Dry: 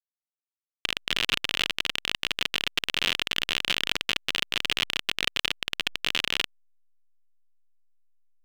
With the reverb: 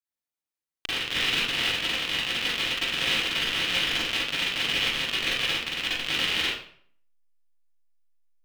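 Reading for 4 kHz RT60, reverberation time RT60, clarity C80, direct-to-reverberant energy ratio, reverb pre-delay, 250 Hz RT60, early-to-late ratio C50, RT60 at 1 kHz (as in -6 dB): 0.45 s, 0.60 s, 3.5 dB, -9.5 dB, 38 ms, 0.55 s, -3.0 dB, 0.55 s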